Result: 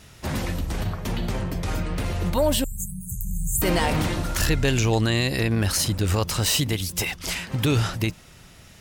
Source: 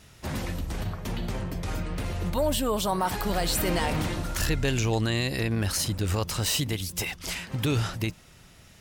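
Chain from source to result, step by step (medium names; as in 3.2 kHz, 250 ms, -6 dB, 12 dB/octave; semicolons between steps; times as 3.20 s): 2.64–3.62 s: brick-wall FIR band-stop 180–6200 Hz; trim +4.5 dB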